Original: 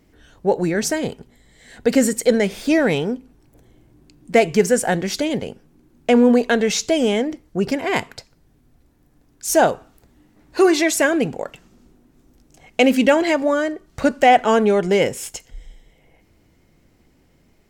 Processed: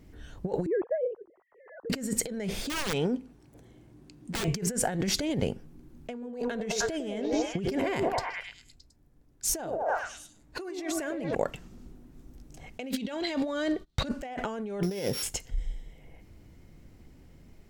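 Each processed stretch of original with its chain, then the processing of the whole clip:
0.66–1.9 sine-wave speech + LPF 1200 Hz 24 dB/oct + three-band squash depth 40%
2.66–4.48 HPF 200 Hz 6 dB/oct + wrapped overs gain 12 dB + bell 14000 Hz -9.5 dB 0.35 oct
6.12–11.35 gate -46 dBFS, range -10 dB + de-esser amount 35% + delay with a stepping band-pass 0.103 s, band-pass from 440 Hz, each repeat 0.7 oct, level -2 dB
12.9–14.08 gate -48 dBFS, range -23 dB + bell 3800 Hz +14.5 dB 0.62 oct
14.83–15.23 sample sorter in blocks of 8 samples + HPF 130 Hz 6 dB/oct
whole clip: low shelf 190 Hz +9.5 dB; negative-ratio compressor -23 dBFS, ratio -1; gain -8.5 dB

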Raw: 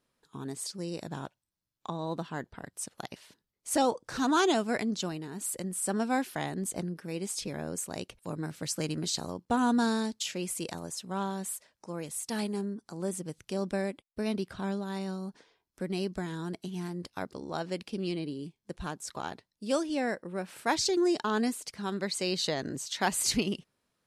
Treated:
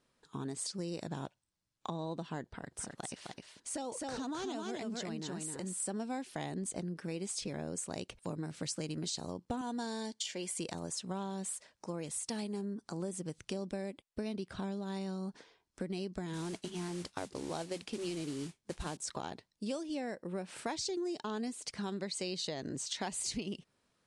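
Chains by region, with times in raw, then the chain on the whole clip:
2.45–5.8 compressor 2:1, threshold -44 dBFS + echo 0.26 s -3.5 dB
9.61–10.59 low shelf 340 Hz -9 dB + notch comb 1300 Hz
16.33–18.97 notch 190 Hz, Q 5.7 + modulation noise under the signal 10 dB
whole clip: steep low-pass 10000 Hz 48 dB/oct; dynamic EQ 1400 Hz, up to -6 dB, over -47 dBFS, Q 1.4; compressor, threshold -38 dBFS; gain +2.5 dB

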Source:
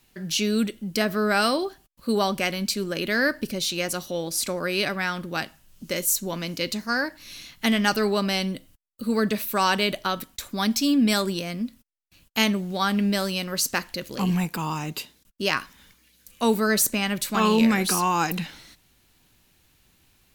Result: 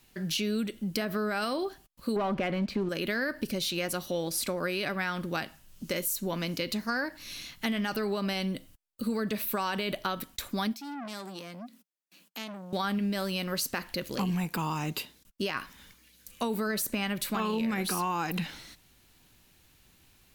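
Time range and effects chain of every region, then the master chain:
2.16–2.89 LPF 1800 Hz + sample leveller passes 2
10.73–12.73 elliptic high-pass 180 Hz + compressor 2:1, threshold -44 dBFS + core saturation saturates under 2300 Hz
whole clip: dynamic EQ 6700 Hz, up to -7 dB, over -43 dBFS, Q 1.2; limiter -16 dBFS; compressor, threshold -27 dBFS

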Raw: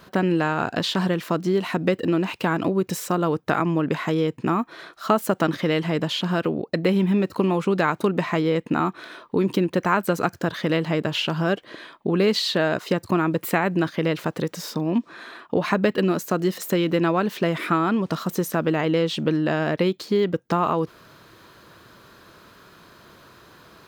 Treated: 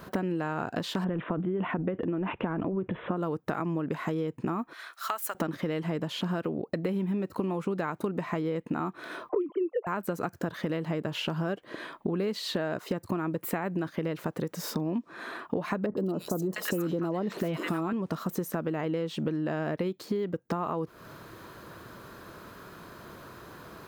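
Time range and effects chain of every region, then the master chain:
1.04–3.17 air absorption 460 m + careless resampling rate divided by 6×, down none, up filtered + transient shaper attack +2 dB, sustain +11 dB
4.73–5.35 HPF 1400 Hz + high shelf 8900 Hz +3.5 dB
9.29–9.87 sine-wave speech + band shelf 840 Hz +10.5 dB 2.4 oct + envelope flanger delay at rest 7.9 ms, full sweep at -13 dBFS
15.86–17.93 three bands offset in time lows, highs, mids 0.11/0.7 s, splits 1100/3700 Hz + fast leveller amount 50%
whole clip: bell 3900 Hz -7.5 dB 2 oct; compressor 5:1, threshold -33 dBFS; gain +4 dB

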